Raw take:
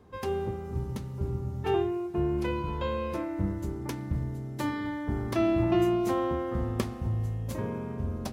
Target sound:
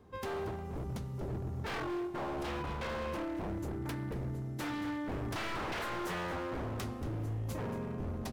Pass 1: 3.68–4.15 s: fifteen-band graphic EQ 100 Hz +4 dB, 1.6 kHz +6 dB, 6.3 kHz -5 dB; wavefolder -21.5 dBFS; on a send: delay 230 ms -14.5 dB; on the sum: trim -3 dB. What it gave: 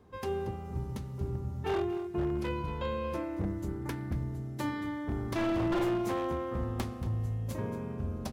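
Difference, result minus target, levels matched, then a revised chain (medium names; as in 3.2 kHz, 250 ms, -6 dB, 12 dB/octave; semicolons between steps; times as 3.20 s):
wavefolder: distortion -14 dB
3.68–4.15 s: fifteen-band graphic EQ 100 Hz +4 dB, 1.6 kHz +6 dB, 6.3 kHz -5 dB; wavefolder -29.5 dBFS; on a send: delay 230 ms -14.5 dB; on the sum: trim -3 dB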